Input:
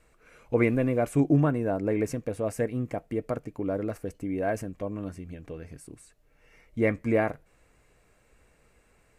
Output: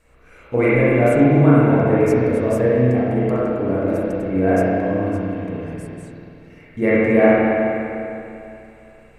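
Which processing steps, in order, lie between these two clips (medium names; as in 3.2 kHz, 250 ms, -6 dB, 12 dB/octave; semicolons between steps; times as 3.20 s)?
spring tank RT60 2.8 s, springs 32/49 ms, chirp 50 ms, DRR -9.5 dB; trim +2 dB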